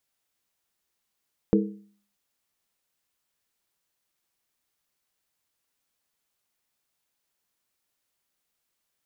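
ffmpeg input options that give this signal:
-f lavfi -i "aevalsrc='0.15*pow(10,-3*t/0.51)*sin(2*PI*203*t)+0.119*pow(10,-3*t/0.404)*sin(2*PI*323.6*t)+0.0944*pow(10,-3*t/0.349)*sin(2*PI*433.6*t)+0.075*pow(10,-3*t/0.337)*sin(2*PI*466.1*t)':d=0.63:s=44100"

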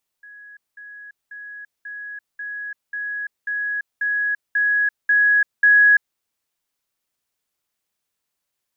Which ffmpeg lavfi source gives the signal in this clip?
-f lavfi -i "aevalsrc='pow(10,(-39.5+3*floor(t/0.54))/20)*sin(2*PI*1670*t)*clip(min(mod(t,0.54),0.34-mod(t,0.54))/0.005,0,1)':d=5.94:s=44100"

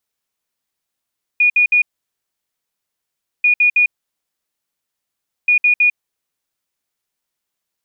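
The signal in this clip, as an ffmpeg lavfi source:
-f lavfi -i "aevalsrc='0.355*sin(2*PI*2450*t)*clip(min(mod(mod(t,2.04),0.16),0.1-mod(mod(t,2.04),0.16))/0.005,0,1)*lt(mod(t,2.04),0.48)':d=6.12:s=44100"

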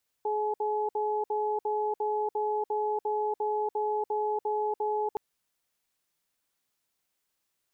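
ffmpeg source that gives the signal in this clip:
-f lavfi -i "aevalsrc='0.0355*(sin(2*PI*423*t)+sin(2*PI*850*t))*clip(min(mod(t,0.35),0.29-mod(t,0.35))/0.005,0,1)':d=4.92:s=44100"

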